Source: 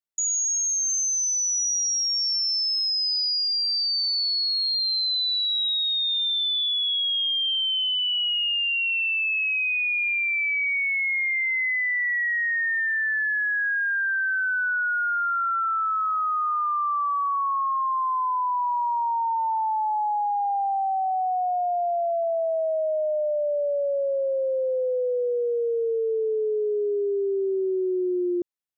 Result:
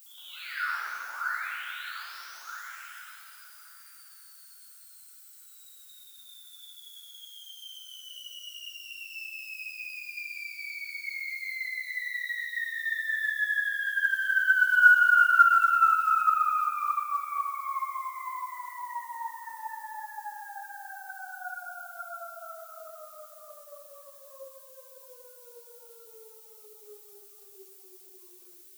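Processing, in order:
stylus tracing distortion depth 0.23 ms
sample-and-hold tremolo, depth 55%
on a send: backwards echo 118 ms −16.5 dB
on the sum: brickwall limiter −29.5 dBFS, peak gain reduction 9 dB
in parallel at +2 dB: compressor whose output falls as the input rises −36 dBFS, ratio −0.5
on the sum: four-pole ladder band-pass 1,500 Hz, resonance 80%
four-comb reverb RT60 2.6 s, combs from 26 ms, DRR −8 dB
floating-point word with a short mantissa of 4 bits
background noise violet −49 dBFS
string-ensemble chorus

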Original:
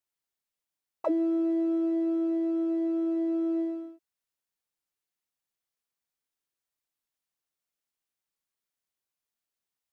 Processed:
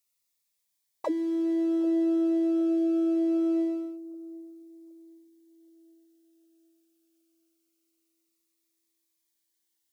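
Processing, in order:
high-shelf EQ 2,300 Hz +10.5 dB
delay with a low-pass on its return 767 ms, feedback 41%, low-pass 550 Hz, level −15.5 dB
phaser whose notches keep moving one way falling 0.24 Hz
level +1.5 dB

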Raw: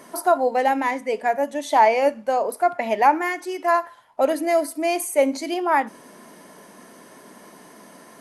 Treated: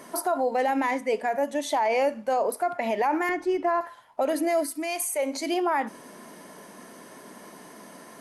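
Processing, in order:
0:03.29–0:03.81: RIAA equalisation playback
brickwall limiter −16.5 dBFS, peak gain reduction 11.5 dB
0:04.62–0:05.45: parametric band 800 Hz → 140 Hz −12.5 dB 1.1 octaves

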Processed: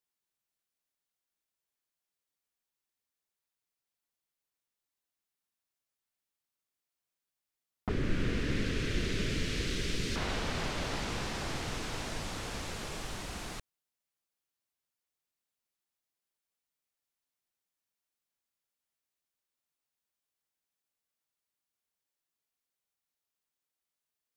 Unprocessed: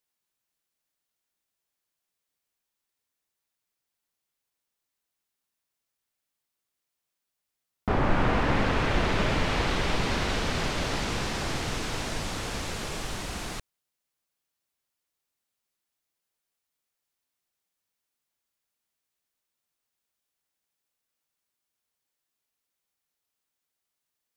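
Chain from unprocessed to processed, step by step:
0:07.89–0:10.16: drawn EQ curve 430 Hz 0 dB, 830 Hz −23 dB, 1,600 Hz −4 dB, 6,200 Hz +5 dB
level −6 dB

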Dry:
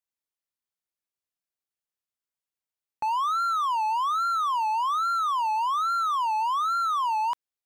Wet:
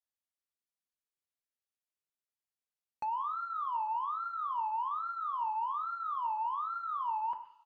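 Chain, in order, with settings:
single-tap delay 123 ms −21.5 dB
coupled-rooms reverb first 0.44 s, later 1.6 s, from −25 dB, DRR 5 dB
treble cut that deepens with the level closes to 1,200 Hz, closed at −24 dBFS
level −8 dB

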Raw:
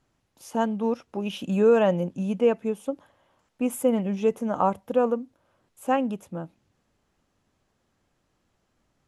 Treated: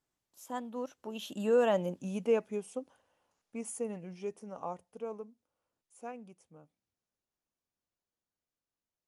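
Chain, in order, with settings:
source passing by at 0:02.01, 33 m/s, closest 26 metres
bass and treble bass −5 dB, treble +7 dB
level −6 dB

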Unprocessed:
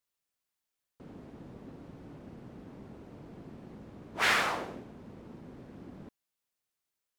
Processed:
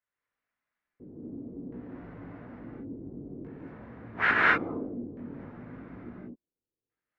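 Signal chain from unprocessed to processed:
auto-filter low-pass square 0.58 Hz 360–1,800 Hz
multi-voice chorus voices 2, 0.49 Hz, delay 19 ms, depth 2.5 ms
reverb whose tail is shaped and stops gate 260 ms rising, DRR −5 dB

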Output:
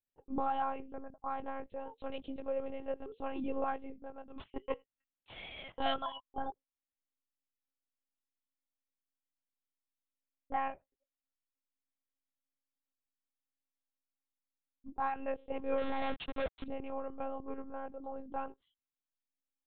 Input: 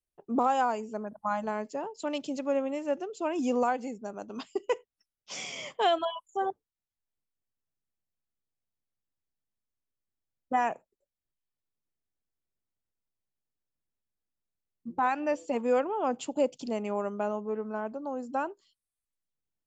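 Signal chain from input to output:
0:15.79–0:16.64: log-companded quantiser 2 bits
pitch vibrato 2.2 Hz 39 cents
one-pitch LPC vocoder at 8 kHz 270 Hz
level −7.5 dB

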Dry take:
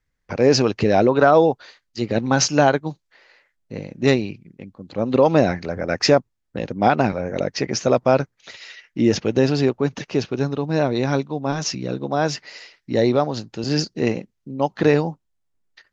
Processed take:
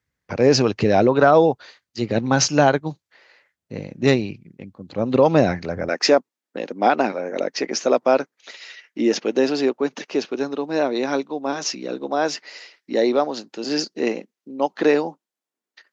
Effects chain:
high-pass filter 63 Hz 24 dB per octave, from 0:05.89 250 Hz

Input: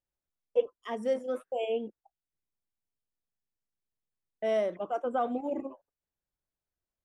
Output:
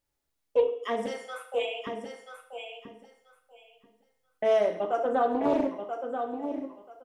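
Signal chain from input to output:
0:01.06–0:01.87: high-pass filter 900 Hz 24 dB per octave
convolution reverb RT60 0.60 s, pre-delay 4 ms, DRR 2 dB
in parallel at +3 dB: downward compressor, threshold −38 dBFS, peak gain reduction 17.5 dB
on the sum: repeating echo 984 ms, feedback 18%, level −7 dB
highs frequency-modulated by the lows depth 0.24 ms

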